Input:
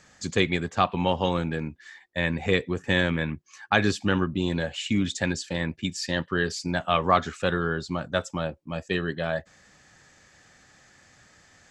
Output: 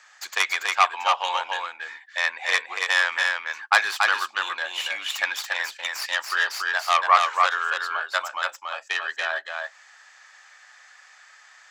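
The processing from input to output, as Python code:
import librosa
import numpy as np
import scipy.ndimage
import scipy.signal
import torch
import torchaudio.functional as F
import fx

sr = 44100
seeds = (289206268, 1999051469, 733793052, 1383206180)

y = fx.tracing_dist(x, sr, depth_ms=0.13)
y = scipy.signal.sosfilt(scipy.signal.butter(4, 900.0, 'highpass', fs=sr, output='sos'), y)
y = fx.high_shelf(y, sr, hz=4800.0, db=-9.5)
y = y + 10.0 ** (-3.5 / 20.0) * np.pad(y, (int(283 * sr / 1000.0), 0))[:len(y)]
y = F.gain(torch.from_numpy(y), 7.0).numpy()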